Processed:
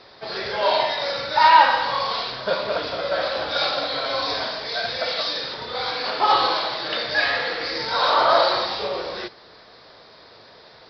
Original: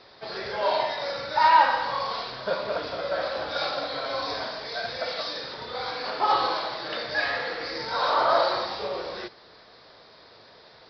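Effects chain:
dynamic equaliser 3,300 Hz, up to +5 dB, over −42 dBFS, Q 1.1
level +4 dB

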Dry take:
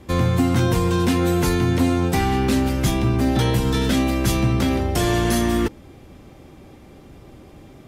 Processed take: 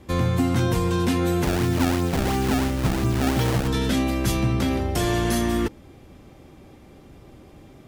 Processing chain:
0:01.44–0:03.68: sample-and-hold swept by an LFO 25×, swing 160% 2.9 Hz
level −3 dB

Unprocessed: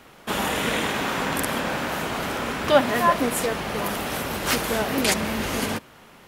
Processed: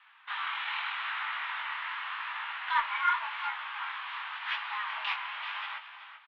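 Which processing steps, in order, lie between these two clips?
single-sideband voice off tune +380 Hz 580–3,000 Hz
on a send: repeating echo 381 ms, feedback 21%, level −11 dB
on the sum: chorus effect 0.86 Hz, delay 16.5 ms, depth 7.9 ms
harmonic generator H 4 −37 dB, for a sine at −10.5 dBFS
level −4.5 dB

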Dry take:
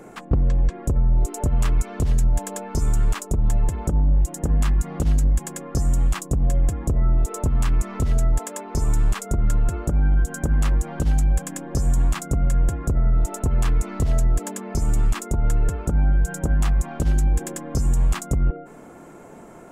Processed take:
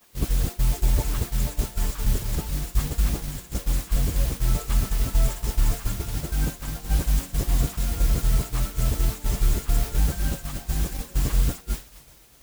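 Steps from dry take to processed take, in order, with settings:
reversed piece by piece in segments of 233 ms
background noise white −32 dBFS
feedback delay with all-pass diffusion 1,119 ms, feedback 55%, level −14 dB
time stretch by phase vocoder 0.63×
downward expander −20 dBFS

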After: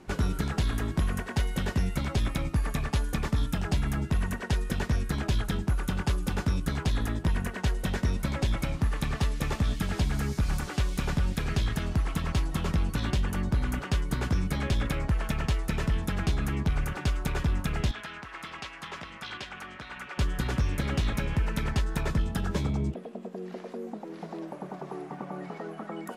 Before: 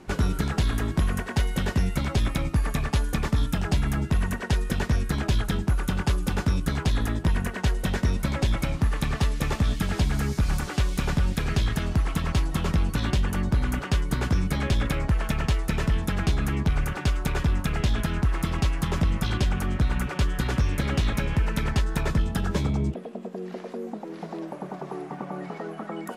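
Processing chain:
0:17.91–0:20.18: resonant band-pass 2,100 Hz, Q 0.65
level −3.5 dB

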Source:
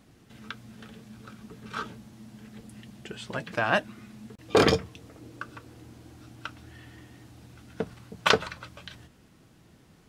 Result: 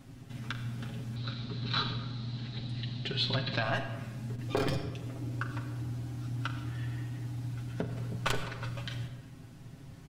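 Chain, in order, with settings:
stylus tracing distortion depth 0.069 ms
low-shelf EQ 170 Hz +10.5 dB
notch filter 450 Hz, Q 12
comb filter 7.4 ms, depth 66%
downward compressor 4 to 1, threshold −31 dBFS, peak gain reduction 16.5 dB
0:01.16–0:03.63: low-pass with resonance 4,000 Hz, resonance Q 9.7
convolution reverb RT60 1.3 s, pre-delay 44 ms, DRR 7.5 dB

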